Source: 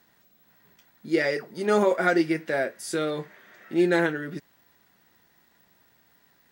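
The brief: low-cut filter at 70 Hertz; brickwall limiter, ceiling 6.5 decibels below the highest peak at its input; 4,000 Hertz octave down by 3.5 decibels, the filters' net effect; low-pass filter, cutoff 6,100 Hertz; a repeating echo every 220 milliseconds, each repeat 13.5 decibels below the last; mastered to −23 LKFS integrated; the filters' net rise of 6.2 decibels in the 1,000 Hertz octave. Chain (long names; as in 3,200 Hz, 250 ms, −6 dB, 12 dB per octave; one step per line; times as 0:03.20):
high-pass filter 70 Hz
low-pass filter 6,100 Hz
parametric band 1,000 Hz +9 dB
parametric band 4,000 Hz −4 dB
brickwall limiter −13 dBFS
repeating echo 220 ms, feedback 21%, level −13.5 dB
level +2 dB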